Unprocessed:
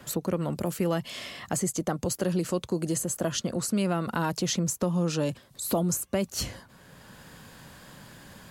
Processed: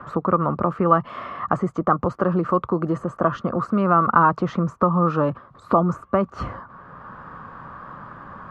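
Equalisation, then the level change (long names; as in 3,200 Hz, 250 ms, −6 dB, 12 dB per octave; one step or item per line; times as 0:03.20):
low-pass with resonance 1,200 Hz, resonance Q 9.2
+5.5 dB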